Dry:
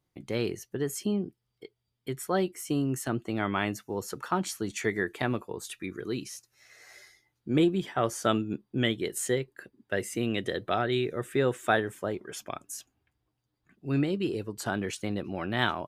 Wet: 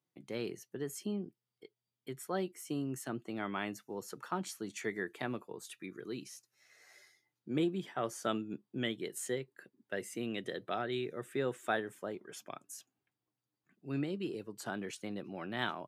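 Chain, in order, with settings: high-pass 130 Hz 24 dB/octave; trim -8.5 dB

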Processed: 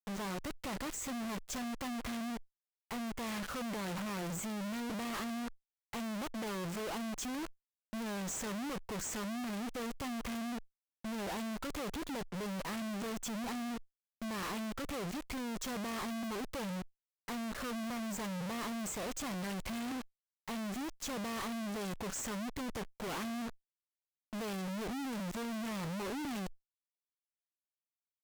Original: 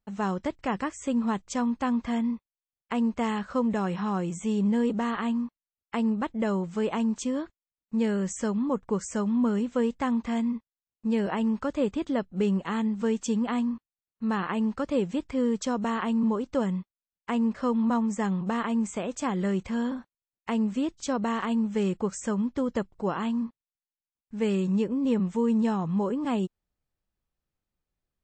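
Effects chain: fuzz box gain 45 dB, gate -45 dBFS; valve stage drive 40 dB, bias 0.55; trim +1.5 dB

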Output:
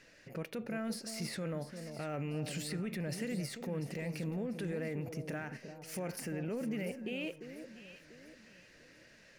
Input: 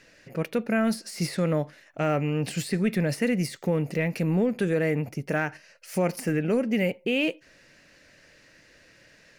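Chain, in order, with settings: peak limiter -26.5 dBFS, peak gain reduction 11.5 dB; echo whose repeats swap between lows and highs 347 ms, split 920 Hz, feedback 59%, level -8 dB; trim -5 dB

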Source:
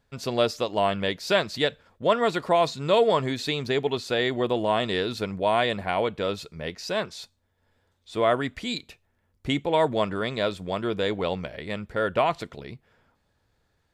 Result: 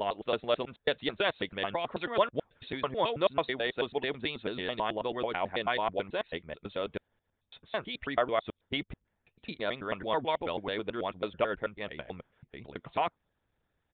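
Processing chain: slices played last to first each 109 ms, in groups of 8; harmonic-percussive split harmonic -12 dB; resampled via 8 kHz; trim -3.5 dB

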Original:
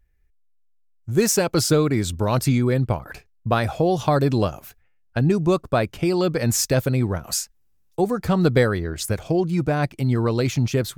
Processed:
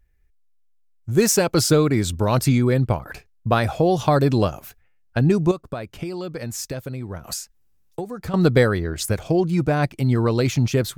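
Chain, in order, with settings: 5.51–8.34 s: compression 10:1, threshold -28 dBFS, peak gain reduction 14 dB; trim +1.5 dB

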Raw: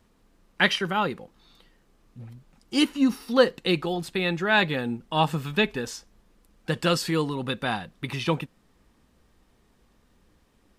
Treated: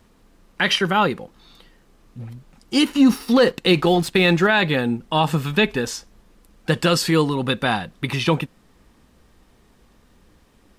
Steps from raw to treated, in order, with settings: 2.86–4.47 s: waveshaping leveller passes 1; peak limiter -14.5 dBFS, peak gain reduction 9.5 dB; trim +7.5 dB

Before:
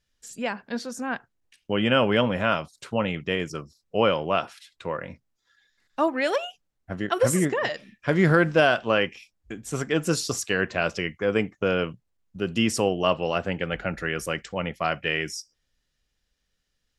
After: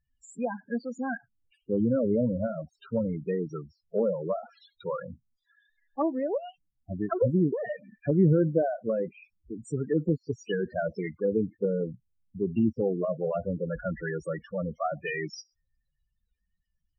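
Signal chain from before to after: loudest bins only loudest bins 8; low-pass that closes with the level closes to 480 Hz, closed at -22 dBFS

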